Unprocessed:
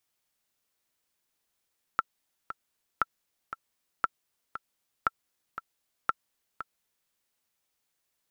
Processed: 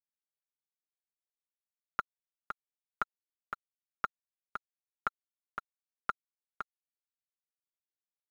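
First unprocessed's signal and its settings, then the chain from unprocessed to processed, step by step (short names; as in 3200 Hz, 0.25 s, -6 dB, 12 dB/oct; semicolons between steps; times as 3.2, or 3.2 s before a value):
metronome 117 bpm, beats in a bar 2, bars 5, 1340 Hz, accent 12 dB -10.5 dBFS
comb 4.9 ms, depth 76%; limiter -16.5 dBFS; crossover distortion -58.5 dBFS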